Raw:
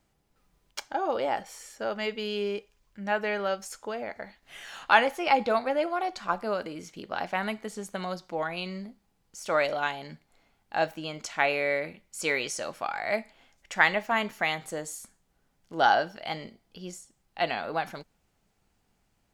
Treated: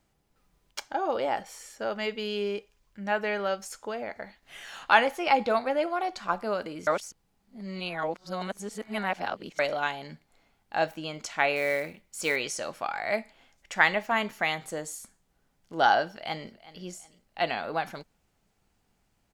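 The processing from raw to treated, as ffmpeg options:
-filter_complex "[0:a]asettb=1/sr,asplit=3[a][b][c];[a]atrim=end=11.564[d];[b]atrim=start=11.56:end=12.36,asetpts=PTS-STARTPTS,afade=t=in:d=0.004:c=qsin,afade=t=out:st=0.796:d=0.004:c=qsin,acrusher=bits=5:mode=log:mix=0:aa=0.000001[e];[c]atrim=start=12.356[f];[d][e]acrossfade=d=0.004:c1=hsin:c2=qsin[g];[g][f]acrossfade=d=0.004:c1=qsin:c2=hsin,asplit=2[h][i];[i]afade=t=in:st=16.07:d=0.01,afade=t=out:st=16.81:d=0.01,aecho=0:1:370|740|1110:0.133352|0.0466733|0.0163356[j];[h][j]amix=inputs=2:normalize=0,asplit=3[k][l][m];[k]atrim=end=6.872[n];[l]atrim=start=6.868:end=9.592,asetpts=PTS-STARTPTS,areverse[o];[m]atrim=start=9.588[p];[n][o]acrossfade=d=0.004:c1=hsin:c2=hsin[q];[q][p]acrossfade=d=0.004:c1=hsin:c2=hsin"

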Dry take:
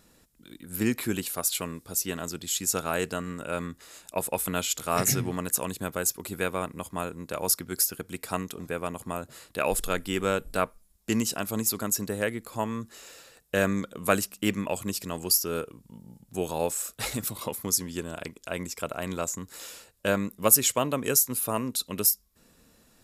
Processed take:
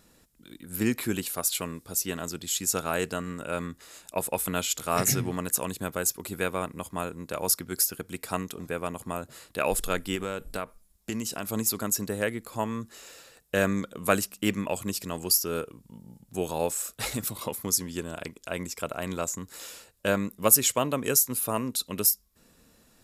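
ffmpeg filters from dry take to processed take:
-filter_complex "[0:a]asettb=1/sr,asplit=3[a][b][c];[a]atrim=end=10.154[d];[b]atrim=start=10.15:end=11.47,asetpts=PTS-STARTPTS,afade=t=in:d=0.004:c=qsin,afade=t=out:st=1.316:d=0.004:c=qsin,acompressor=threshold=-28dB:ratio=4:attack=3.2:release=140:knee=1:detection=peak[e];[c]atrim=start=11.466[f];[d][e]acrossfade=d=0.004:c1=hsin:c2=qsin[g];[g][f]acrossfade=d=0.004:c1=qsin:c2=hsin"

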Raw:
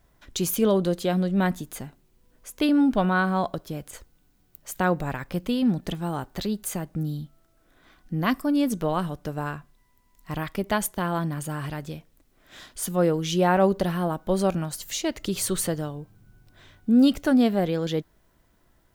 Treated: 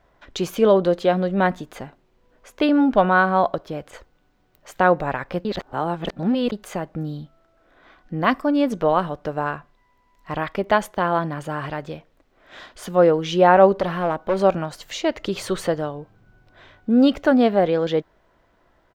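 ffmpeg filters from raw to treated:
-filter_complex "[0:a]asettb=1/sr,asplit=3[a][b][c];[a]atrim=end=13.804[d];[b]atrim=start=13.8:end=14.42,asetpts=PTS-STARTPTS,afade=t=in:d=0.004:c=qsin,afade=t=out:st=0.616:d=0.004:c=qsin,volume=22.5dB,asoftclip=hard,volume=-22.5dB[e];[c]atrim=start=14.416[f];[d][e]acrossfade=d=0.004:c1=hsin:c2=qsin[g];[g][f]acrossfade=d=0.004:c1=qsin:c2=hsin,asplit=3[h][i][j];[h]atrim=end=5.452[k];[i]atrim=start=5.448:end=6.522,asetpts=PTS-STARTPTS,areverse[l];[j]atrim=start=6.518[m];[k][l]acrossfade=d=0.004:c1=hsin:c2=hsin[n];[n][m]acrossfade=d=0.004:c1=hsin:c2=hsin,firequalizer=gain_entry='entry(160,0);entry(530,10);entry(9800,-13)':delay=0.05:min_phase=1,volume=-1dB"

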